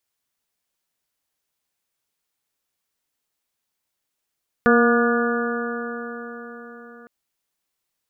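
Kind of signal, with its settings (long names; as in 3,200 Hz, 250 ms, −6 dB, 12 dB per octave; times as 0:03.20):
stiff-string partials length 2.41 s, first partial 235 Hz, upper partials 0.5/−7.5/−18.5/−4.5/−3/−8 dB, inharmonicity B 0.0015, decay 4.71 s, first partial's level −16 dB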